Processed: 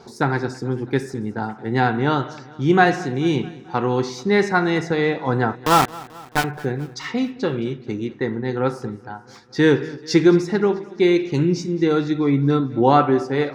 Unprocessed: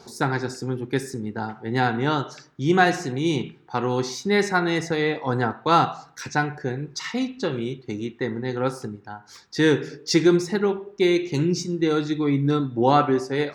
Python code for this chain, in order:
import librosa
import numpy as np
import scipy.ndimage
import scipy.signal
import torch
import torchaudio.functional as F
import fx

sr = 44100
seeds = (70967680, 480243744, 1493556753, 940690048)

p1 = fx.high_shelf(x, sr, hz=4800.0, db=-11.5)
p2 = fx.sample_gate(p1, sr, floor_db=-19.0, at=(5.55, 6.44))
p3 = p2 + fx.echo_feedback(p2, sr, ms=218, feedback_pct=59, wet_db=-20.5, dry=0)
y = F.gain(torch.from_numpy(p3), 3.5).numpy()